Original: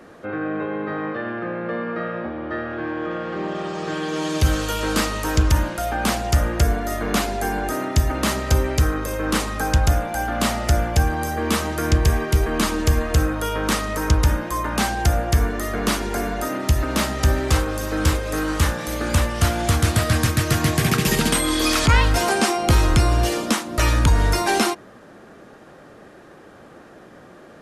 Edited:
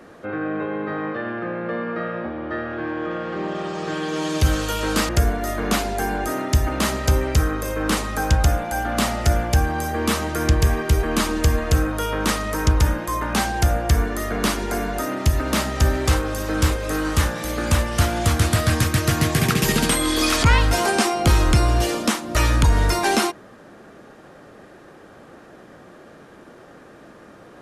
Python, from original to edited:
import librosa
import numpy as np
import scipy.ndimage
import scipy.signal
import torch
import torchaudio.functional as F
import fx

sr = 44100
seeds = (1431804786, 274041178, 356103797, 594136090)

y = fx.edit(x, sr, fx.cut(start_s=5.09, length_s=1.43), tone=tone)